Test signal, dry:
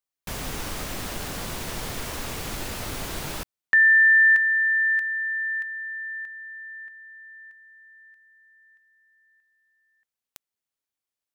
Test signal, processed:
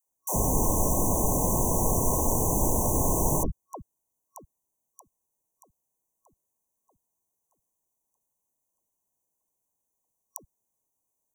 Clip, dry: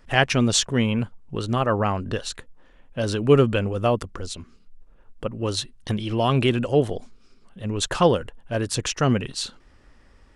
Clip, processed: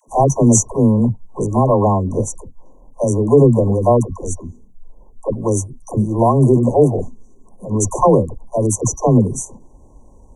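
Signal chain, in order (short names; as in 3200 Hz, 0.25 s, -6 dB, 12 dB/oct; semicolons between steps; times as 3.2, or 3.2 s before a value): FFT band-reject 1100–5800 Hz; dispersion lows, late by 84 ms, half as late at 390 Hz; maximiser +10 dB; gain -1 dB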